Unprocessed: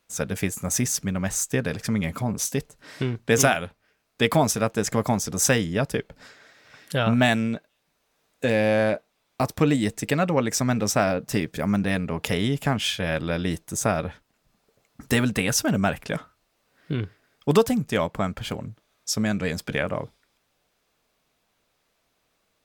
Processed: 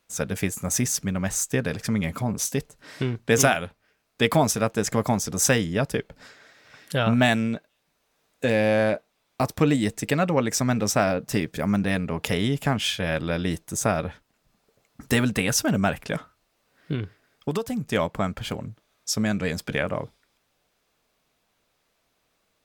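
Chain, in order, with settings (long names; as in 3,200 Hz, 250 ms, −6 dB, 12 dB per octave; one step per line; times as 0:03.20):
0:16.94–0:17.92: downward compressor 10 to 1, threshold −23 dBFS, peak gain reduction 11.5 dB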